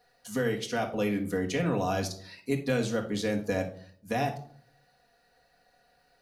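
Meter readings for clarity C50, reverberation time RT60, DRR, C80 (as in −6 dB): 10.0 dB, 0.55 s, 0.5 dB, 16.0 dB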